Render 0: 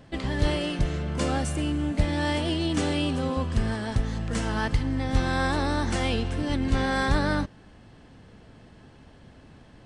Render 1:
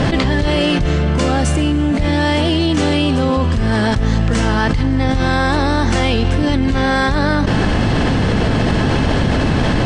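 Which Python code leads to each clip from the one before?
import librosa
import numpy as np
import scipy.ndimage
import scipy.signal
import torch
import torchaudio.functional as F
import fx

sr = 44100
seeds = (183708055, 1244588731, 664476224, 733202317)

y = scipy.signal.sosfilt(scipy.signal.butter(2, 7300.0, 'lowpass', fs=sr, output='sos'), x)
y = fx.env_flatten(y, sr, amount_pct=100)
y = y * librosa.db_to_amplitude(2.5)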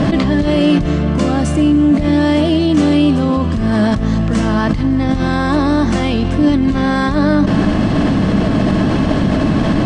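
y = fx.small_body(x, sr, hz=(200.0, 290.0, 620.0, 1100.0), ring_ms=45, db=10)
y = y * librosa.db_to_amplitude(-4.0)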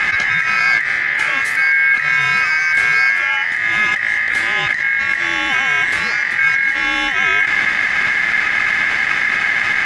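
y = fx.echo_thinned(x, sr, ms=758, feedback_pct=77, hz=420.0, wet_db=-18)
y = y * np.sin(2.0 * np.pi * 1900.0 * np.arange(len(y)) / sr)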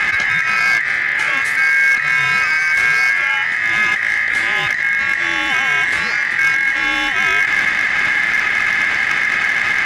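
y = fx.clip_asym(x, sr, top_db=-8.5, bottom_db=-7.0)
y = y + 10.0 ** (-14.0 / 20.0) * np.pad(y, (int(1146 * sr / 1000.0), 0))[:len(y)]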